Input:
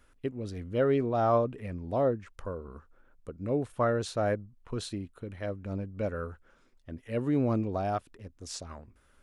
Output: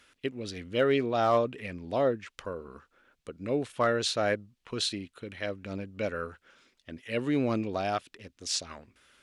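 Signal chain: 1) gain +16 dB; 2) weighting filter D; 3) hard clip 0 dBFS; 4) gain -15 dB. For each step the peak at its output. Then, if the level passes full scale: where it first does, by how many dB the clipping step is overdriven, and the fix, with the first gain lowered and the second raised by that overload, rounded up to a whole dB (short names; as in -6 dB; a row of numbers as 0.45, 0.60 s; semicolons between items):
+1.5, +3.0, 0.0, -15.0 dBFS; step 1, 3.0 dB; step 1 +13 dB, step 4 -12 dB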